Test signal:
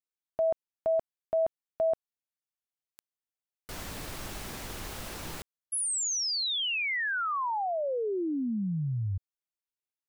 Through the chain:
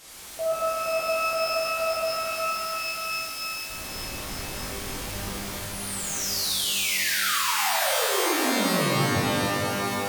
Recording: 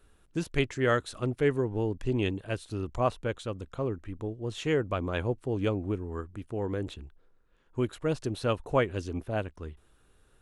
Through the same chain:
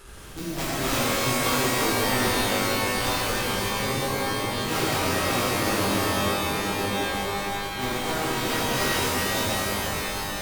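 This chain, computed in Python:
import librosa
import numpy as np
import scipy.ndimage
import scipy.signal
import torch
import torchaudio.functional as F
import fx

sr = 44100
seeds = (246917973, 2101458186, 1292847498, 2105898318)

y = fx.delta_mod(x, sr, bps=64000, step_db=-36.0)
y = (np.mod(10.0 ** (21.0 / 20.0) * y + 1.0, 2.0) - 1.0) / 10.0 ** (21.0 / 20.0)
y = fx.rev_shimmer(y, sr, seeds[0], rt60_s=3.4, semitones=12, shimmer_db=-2, drr_db=-11.0)
y = y * librosa.db_to_amplitude(-8.5)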